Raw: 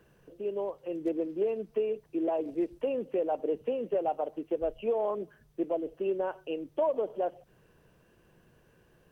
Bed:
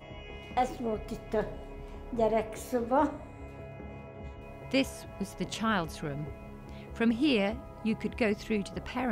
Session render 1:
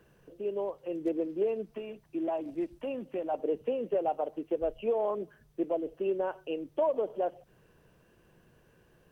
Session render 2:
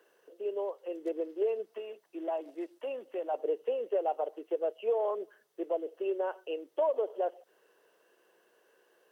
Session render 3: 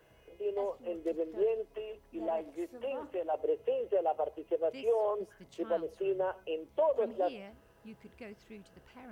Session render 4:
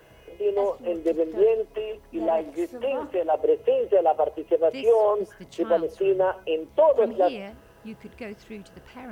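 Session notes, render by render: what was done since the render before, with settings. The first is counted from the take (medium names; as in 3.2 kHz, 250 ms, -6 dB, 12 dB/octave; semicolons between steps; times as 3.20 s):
1.73–3.34 s: peaking EQ 450 Hz -14 dB 0.36 oct
Chebyshev high-pass 410 Hz, order 3; band-stop 2.4 kHz, Q 12
add bed -19.5 dB
trim +10.5 dB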